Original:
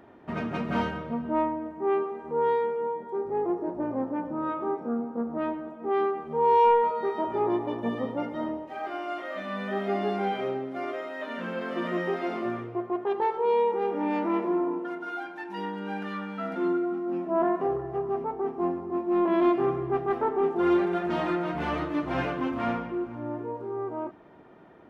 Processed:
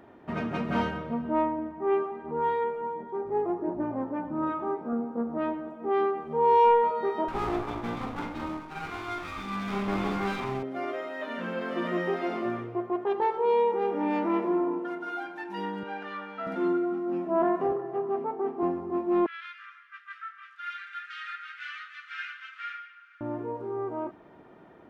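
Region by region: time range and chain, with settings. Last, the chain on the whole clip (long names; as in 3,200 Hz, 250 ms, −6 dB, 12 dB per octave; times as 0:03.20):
0:01.58–0:04.93: low-pass filter 4,000 Hz + notch filter 500 Hz, Q 5.3 + phase shifter 1.4 Hz, delay 2.3 ms, feedback 27%
0:07.28–0:10.63: lower of the sound and its delayed copy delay 0.87 ms + double-tracking delay 45 ms −7 dB
0:15.83–0:16.47: high-pass filter 400 Hz + high-frequency loss of the air 98 metres
0:17.72–0:18.63: high-pass filter 180 Hz 24 dB per octave + high-frequency loss of the air 93 metres
0:19.26–0:23.21: Butterworth high-pass 1,300 Hz 96 dB per octave + high-frequency loss of the air 77 metres
whole clip: no processing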